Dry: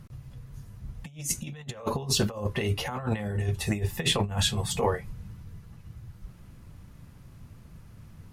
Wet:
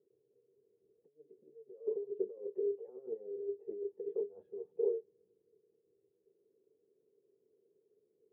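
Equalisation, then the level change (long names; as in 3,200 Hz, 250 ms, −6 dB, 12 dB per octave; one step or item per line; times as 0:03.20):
flat-topped band-pass 420 Hz, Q 5.6
high-frequency loss of the air 360 metres
+1.5 dB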